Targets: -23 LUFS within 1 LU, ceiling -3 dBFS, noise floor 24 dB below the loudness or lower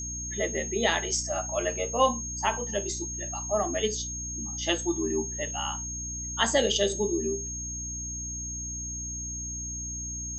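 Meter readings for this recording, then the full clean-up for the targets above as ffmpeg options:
hum 60 Hz; harmonics up to 300 Hz; hum level -37 dBFS; steady tone 6500 Hz; tone level -34 dBFS; loudness -29.0 LUFS; peak -9.5 dBFS; loudness target -23.0 LUFS
-> -af "bandreject=f=60:t=h:w=4,bandreject=f=120:t=h:w=4,bandreject=f=180:t=h:w=4,bandreject=f=240:t=h:w=4,bandreject=f=300:t=h:w=4"
-af "bandreject=f=6.5k:w=30"
-af "volume=6dB"

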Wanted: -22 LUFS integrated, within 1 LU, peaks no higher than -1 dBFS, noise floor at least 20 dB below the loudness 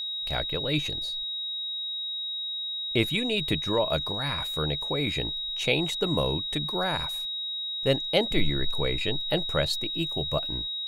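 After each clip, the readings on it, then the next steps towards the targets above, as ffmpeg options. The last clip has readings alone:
steady tone 3800 Hz; tone level -30 dBFS; loudness -27.5 LUFS; peak -9.5 dBFS; loudness target -22.0 LUFS
-> -af "bandreject=f=3.8k:w=30"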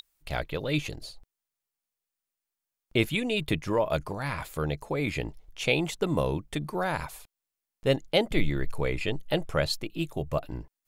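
steady tone none; loudness -30.0 LUFS; peak -10.0 dBFS; loudness target -22.0 LUFS
-> -af "volume=8dB"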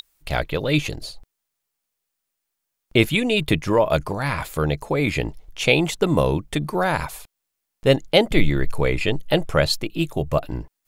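loudness -22.0 LUFS; peak -2.0 dBFS; noise floor -80 dBFS

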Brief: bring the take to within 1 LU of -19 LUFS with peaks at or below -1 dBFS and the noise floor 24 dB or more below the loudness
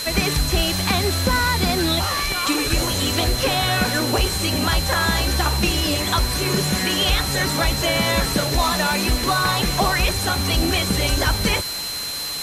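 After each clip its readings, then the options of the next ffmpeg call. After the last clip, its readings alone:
steady tone 4100 Hz; tone level -27 dBFS; noise floor -28 dBFS; noise floor target -44 dBFS; loudness -19.5 LUFS; peak -5.5 dBFS; loudness target -19.0 LUFS
-> -af "bandreject=f=4.1k:w=30"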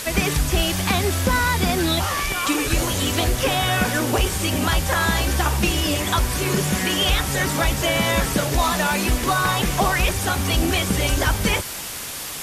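steady tone none; noise floor -31 dBFS; noise floor target -45 dBFS
-> -af "afftdn=nr=14:nf=-31"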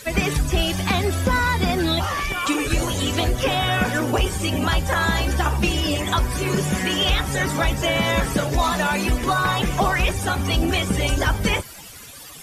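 noise floor -40 dBFS; noise floor target -46 dBFS
-> -af "afftdn=nr=6:nf=-40"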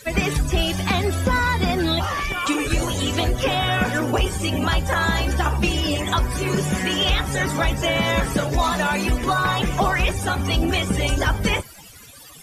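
noise floor -43 dBFS; noise floor target -46 dBFS
-> -af "afftdn=nr=6:nf=-43"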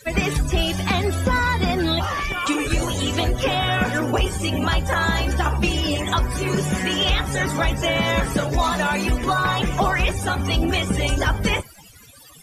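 noise floor -46 dBFS; loudness -21.5 LUFS; peak -6.5 dBFS; loudness target -19.0 LUFS
-> -af "volume=2.5dB"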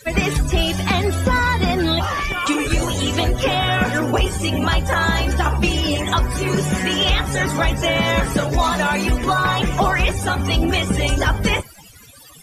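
loudness -19.0 LUFS; peak -4.0 dBFS; noise floor -44 dBFS

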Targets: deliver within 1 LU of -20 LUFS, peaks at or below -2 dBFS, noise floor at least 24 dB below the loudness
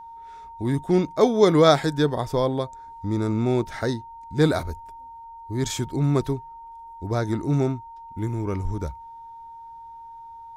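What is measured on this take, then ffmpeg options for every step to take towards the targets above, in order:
steady tone 920 Hz; tone level -39 dBFS; loudness -23.5 LUFS; peak -3.5 dBFS; loudness target -20.0 LUFS
-> -af "bandreject=f=920:w=30"
-af "volume=3.5dB,alimiter=limit=-2dB:level=0:latency=1"

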